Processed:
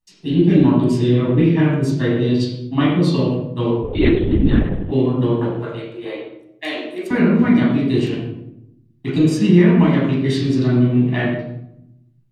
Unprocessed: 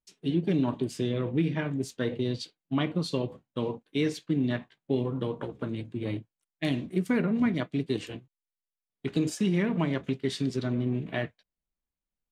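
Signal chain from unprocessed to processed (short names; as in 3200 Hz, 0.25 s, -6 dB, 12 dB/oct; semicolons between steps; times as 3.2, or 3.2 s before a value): 5.53–7.11 Chebyshev high-pass 450 Hz, order 3; reverb RT60 0.80 s, pre-delay 11 ms, DRR -5.5 dB; 3.83–4.92 LPC vocoder at 8 kHz whisper; gain +2 dB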